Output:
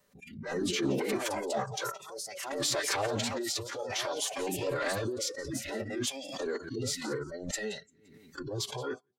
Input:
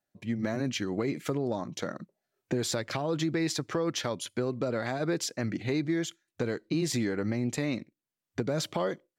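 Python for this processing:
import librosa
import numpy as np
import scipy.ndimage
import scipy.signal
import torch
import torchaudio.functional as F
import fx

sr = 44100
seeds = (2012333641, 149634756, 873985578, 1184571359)

p1 = fx.over_compress(x, sr, threshold_db=-33.0, ratio=-1.0)
p2 = fx.echo_pitch(p1, sr, ms=95, semitones=4, count=2, db_per_echo=-6.0)
p3 = fx.rotary(p2, sr, hz=0.6)
p4 = fx.notch(p3, sr, hz=540.0, q=13.0)
p5 = p4 + fx.echo_feedback(p4, sr, ms=173, feedback_pct=31, wet_db=-19, dry=0)
p6 = fx.noise_reduce_blind(p5, sr, reduce_db=27)
p7 = p6 + 0.37 * np.pad(p6, (int(3.7 * sr / 1000.0), 0))[:len(p6)]
p8 = fx.fold_sine(p7, sr, drive_db=5, ceiling_db=-17.5)
p9 = fx.pitch_keep_formants(p8, sr, semitones=-5.5)
p10 = fx.pre_swell(p9, sr, db_per_s=63.0)
y = F.gain(torch.from_numpy(p10), -4.5).numpy()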